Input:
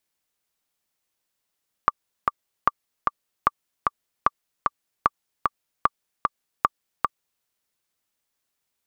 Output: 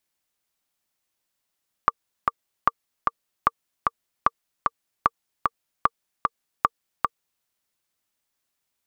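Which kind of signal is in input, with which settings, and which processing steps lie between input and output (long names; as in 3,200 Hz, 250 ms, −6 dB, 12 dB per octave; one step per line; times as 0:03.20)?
click track 151 BPM, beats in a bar 2, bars 7, 1,170 Hz, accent 3 dB −3.5 dBFS
notch filter 460 Hz, Q 12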